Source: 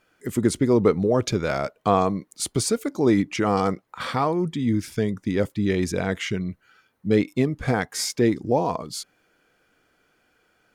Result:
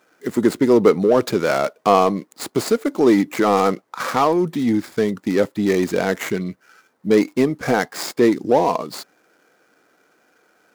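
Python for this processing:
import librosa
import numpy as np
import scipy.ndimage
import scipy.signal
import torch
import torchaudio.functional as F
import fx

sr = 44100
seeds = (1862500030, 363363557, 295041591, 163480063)

p1 = scipy.signal.medfilt(x, 15)
p2 = scipy.signal.sosfilt(scipy.signal.butter(2, 240.0, 'highpass', fs=sr, output='sos'), p1)
p3 = fx.high_shelf(p2, sr, hz=4100.0, db=6.5)
p4 = 10.0 ** (-22.0 / 20.0) * np.tanh(p3 / 10.0 ** (-22.0 / 20.0))
p5 = p3 + F.gain(torch.from_numpy(p4), -4.0).numpy()
y = F.gain(torch.from_numpy(p5), 4.0).numpy()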